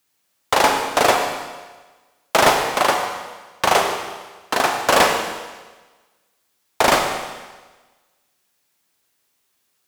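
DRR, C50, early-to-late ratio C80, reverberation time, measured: 2.5 dB, 4.0 dB, 5.5 dB, 1.3 s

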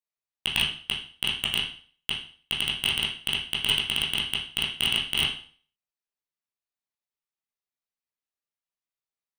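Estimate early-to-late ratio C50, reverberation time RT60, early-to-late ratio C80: 6.0 dB, 0.45 s, 11.0 dB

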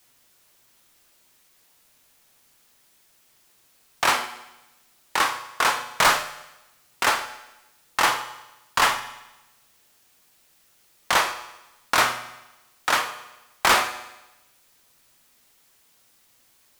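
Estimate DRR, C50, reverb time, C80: 8.5 dB, 11.5 dB, 1.0 s, 13.5 dB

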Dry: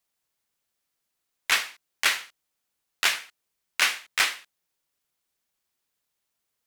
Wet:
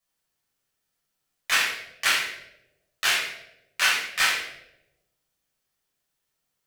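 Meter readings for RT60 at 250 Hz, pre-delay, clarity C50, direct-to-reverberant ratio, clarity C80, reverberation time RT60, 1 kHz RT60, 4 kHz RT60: 1.1 s, 5 ms, 2.5 dB, -6.5 dB, 6.0 dB, 0.90 s, 0.70 s, 0.60 s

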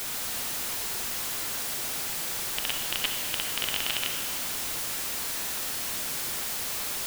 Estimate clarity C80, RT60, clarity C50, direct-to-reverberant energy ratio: 4.5 dB, 2.1 s, 3.5 dB, 3.0 dB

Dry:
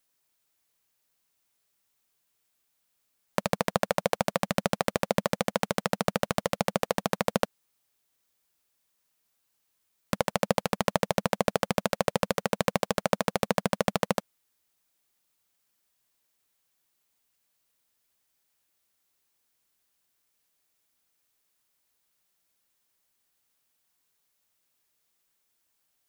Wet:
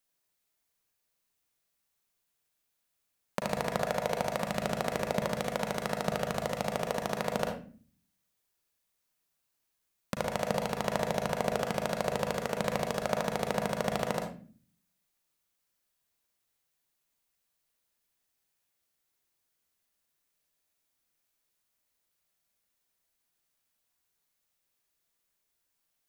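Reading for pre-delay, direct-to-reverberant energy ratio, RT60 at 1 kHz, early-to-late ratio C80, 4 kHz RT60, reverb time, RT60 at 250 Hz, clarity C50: 36 ms, 2.0 dB, 0.35 s, 9.5 dB, 0.30 s, 0.40 s, 0.70 s, 5.0 dB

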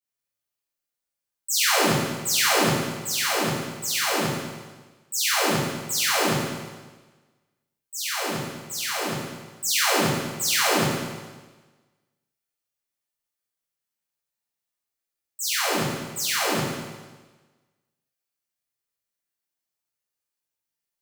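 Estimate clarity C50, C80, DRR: -1.5 dB, 1.0 dB, -10.5 dB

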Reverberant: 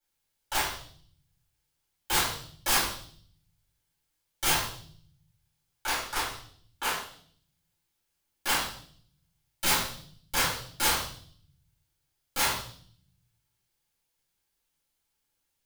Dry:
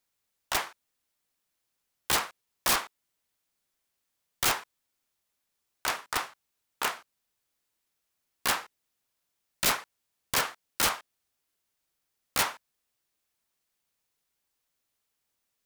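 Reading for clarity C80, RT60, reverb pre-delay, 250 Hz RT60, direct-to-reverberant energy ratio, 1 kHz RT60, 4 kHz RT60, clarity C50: 8.0 dB, 0.55 s, 3 ms, 1.0 s, -10.5 dB, 0.50 s, 0.70 s, 4.5 dB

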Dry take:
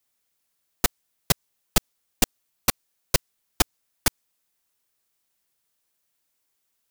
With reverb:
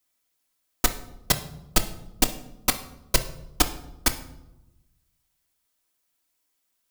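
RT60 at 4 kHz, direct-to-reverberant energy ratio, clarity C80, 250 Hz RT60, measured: 0.60 s, 5.0 dB, 16.0 dB, 1.3 s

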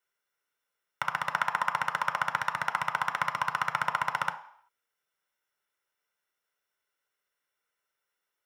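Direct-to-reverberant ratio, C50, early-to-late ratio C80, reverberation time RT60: 7.0 dB, 12.5 dB, 16.5 dB, 0.65 s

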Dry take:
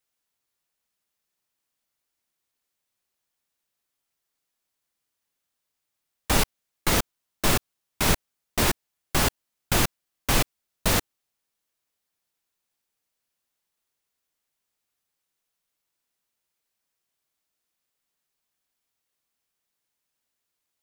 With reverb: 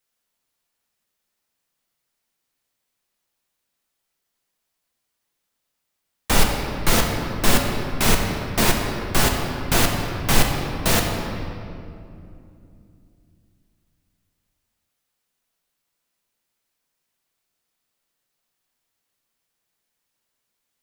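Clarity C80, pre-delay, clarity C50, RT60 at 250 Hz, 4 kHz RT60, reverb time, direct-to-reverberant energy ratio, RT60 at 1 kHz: 4.0 dB, 4 ms, 3.0 dB, 4.0 s, 1.6 s, 2.7 s, 1.0 dB, 2.4 s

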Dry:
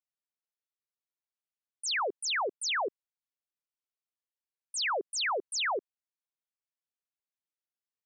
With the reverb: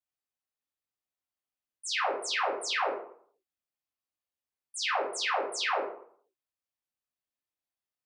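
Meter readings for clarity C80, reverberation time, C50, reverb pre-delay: 9.0 dB, 0.60 s, 4.5 dB, 3 ms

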